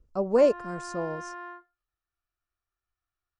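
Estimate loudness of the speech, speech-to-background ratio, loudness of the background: -26.0 LUFS, 15.0 dB, -41.0 LUFS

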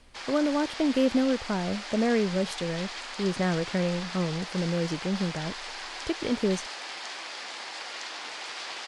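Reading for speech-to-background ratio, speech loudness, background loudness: 8.0 dB, -28.5 LUFS, -36.5 LUFS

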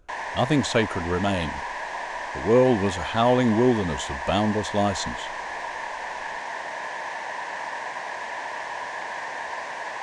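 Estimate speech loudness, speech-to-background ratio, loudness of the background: -23.5 LUFS, 8.5 dB, -32.0 LUFS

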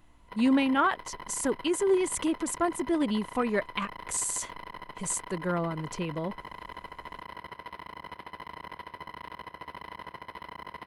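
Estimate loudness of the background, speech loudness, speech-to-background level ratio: -43.5 LUFS, -29.5 LUFS, 14.0 dB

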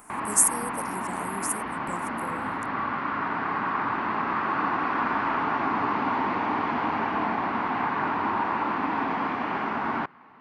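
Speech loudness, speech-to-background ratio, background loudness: -26.0 LUFS, 1.5 dB, -27.5 LUFS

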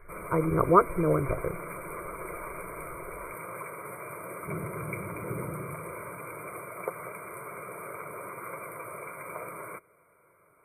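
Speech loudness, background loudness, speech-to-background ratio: -26.0 LUFS, -39.0 LUFS, 13.0 dB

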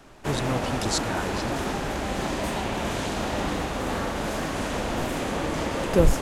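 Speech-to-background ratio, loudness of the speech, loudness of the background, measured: -3.0 dB, -31.0 LUFS, -28.0 LUFS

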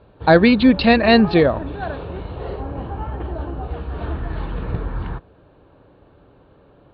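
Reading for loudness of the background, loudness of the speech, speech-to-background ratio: -29.5 LUFS, -14.0 LUFS, 15.5 dB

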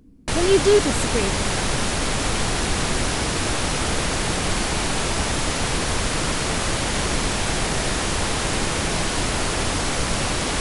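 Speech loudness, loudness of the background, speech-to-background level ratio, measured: -21.5 LUFS, -22.5 LUFS, 1.0 dB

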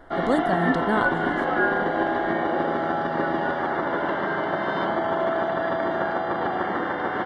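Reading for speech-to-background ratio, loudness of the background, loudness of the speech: -2.5 dB, -24.5 LUFS, -27.0 LUFS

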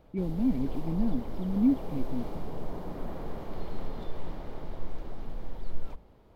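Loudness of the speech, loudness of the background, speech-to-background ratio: -30.5 LUFS, -42.0 LUFS, 11.5 dB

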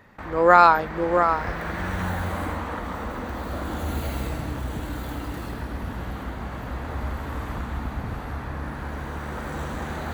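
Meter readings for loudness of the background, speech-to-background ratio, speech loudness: -31.5 LUFS, 13.0 dB, -18.5 LUFS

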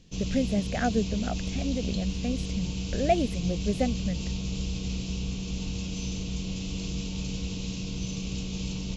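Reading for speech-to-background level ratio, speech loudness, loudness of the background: 2.0 dB, -31.0 LUFS, -33.0 LUFS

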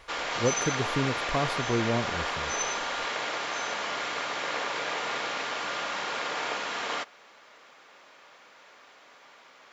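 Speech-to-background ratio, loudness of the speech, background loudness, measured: -0.5 dB, -31.0 LUFS, -30.5 LUFS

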